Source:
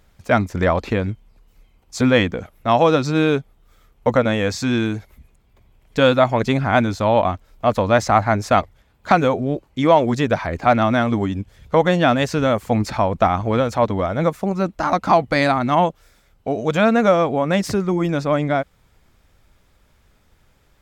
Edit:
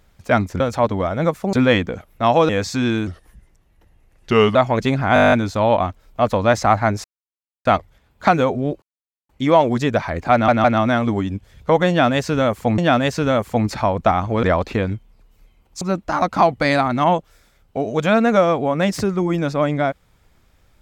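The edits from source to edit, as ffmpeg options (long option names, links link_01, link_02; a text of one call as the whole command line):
ffmpeg -i in.wav -filter_complex "[0:a]asplit=22[link_01][link_02][link_03][link_04][link_05][link_06][link_07][link_08][link_09][link_10][link_11][link_12][link_13][link_14][link_15][link_16][link_17][link_18][link_19][link_20][link_21][link_22];[link_01]atrim=end=0.602[link_23];[link_02]atrim=start=13.588:end=14.522[link_24];[link_03]atrim=start=1.978:end=2.942[link_25];[link_04]atrim=start=4.368:end=4.954[link_26];[link_05]atrim=start=4.95:end=6.18,asetpts=PTS-STARTPTS,asetrate=36603,aresample=44100,atrim=end_sample=65353,asetpts=PTS-STARTPTS[link_27];[link_06]atrim=start=6.176:end=6.792[link_28];[link_07]atrim=start=6.768:end=6.792[link_29];[link_08]atrim=start=6.768:end=6.792[link_30];[link_09]atrim=start=6.768:end=6.792[link_31];[link_10]atrim=start=6.768:end=6.792[link_32];[link_11]atrim=start=6.768:end=6.792[link_33];[link_12]atrim=start=6.768:end=6.792[link_34];[link_13]atrim=start=6.768:end=6.792[link_35];[link_14]atrim=start=6.768:end=6.792[link_36];[link_15]atrim=start=6.768:end=8.49,asetpts=PTS-STARTPTS,afade=type=out:start_time=1.718:duration=0.004:curve=hsin,apad=pad_dur=0.61[link_37];[link_16]atrim=start=8.49:end=9.66,asetpts=PTS-STARTPTS,afade=type=in:duration=0.004:curve=hsin,afade=type=out:start_time=1.166:duration=0.004:curve=hsin,apad=pad_dur=0.47[link_38];[link_17]atrim=start=9.66:end=10.852,asetpts=PTS-STARTPTS,afade=type=in:duration=0.004:curve=hsin[link_39];[link_18]atrim=start=10.688:end=10.852[link_40];[link_19]atrim=start=10.688:end=12.832[link_41];[link_20]atrim=start=11.938:end=13.592[link_42];[link_21]atrim=start=0.598:end=1.982[link_43];[link_22]atrim=start=14.518[link_44];[link_23][link_24]acrossfade=duration=0.004:curve1=hsin:curve2=hsin[link_45];[link_45][link_25]acrossfade=duration=0.004:curve1=hsin:curve2=hsin[link_46];[link_46][link_26]acrossfade=duration=0.004:curve1=hsin:curve2=hsin[link_47];[link_47][link_27]acrossfade=duration=0.004:curve1=hsin:curve2=hsin[link_48];[link_48][link_28]acrossfade=duration=0.004:curve1=hsin:curve2=hsin[link_49];[link_49][link_29]acrossfade=duration=0.004:curve1=hsin:curve2=hsin[link_50];[link_50][link_30]acrossfade=duration=0.004:curve1=hsin:curve2=hsin[link_51];[link_51][link_31]acrossfade=duration=0.004:curve1=hsin:curve2=hsin[link_52];[link_52][link_32]acrossfade=duration=0.004:curve1=hsin:curve2=hsin[link_53];[link_53][link_33]acrossfade=duration=0.004:curve1=hsin:curve2=hsin[link_54];[link_54][link_34]acrossfade=duration=0.004:curve1=hsin:curve2=hsin[link_55];[link_55][link_35]acrossfade=duration=0.004:curve1=hsin:curve2=hsin[link_56];[link_56][link_36]acrossfade=duration=0.004:curve1=hsin:curve2=hsin[link_57];[link_37][link_38][link_39]concat=n=3:v=0:a=1[link_58];[link_57][link_58]acrossfade=duration=0.004:curve1=hsin:curve2=hsin[link_59];[link_59][link_40]acrossfade=duration=0.004:curve1=hsin:curve2=hsin[link_60];[link_60][link_41]acrossfade=duration=0.004:curve1=hsin:curve2=hsin[link_61];[link_61][link_42]acrossfade=duration=0.004:curve1=hsin:curve2=hsin[link_62];[link_62][link_43]acrossfade=duration=0.004:curve1=hsin:curve2=hsin[link_63];[link_63][link_44]acrossfade=duration=0.004:curve1=hsin:curve2=hsin" out.wav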